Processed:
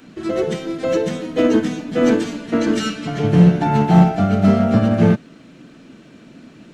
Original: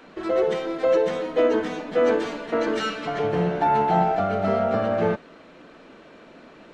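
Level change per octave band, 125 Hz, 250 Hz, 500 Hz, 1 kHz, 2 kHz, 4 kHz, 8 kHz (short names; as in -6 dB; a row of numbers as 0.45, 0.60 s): +15.5 dB, +12.5 dB, +1.0 dB, -0.5 dB, +2.5 dB, +5.5 dB, n/a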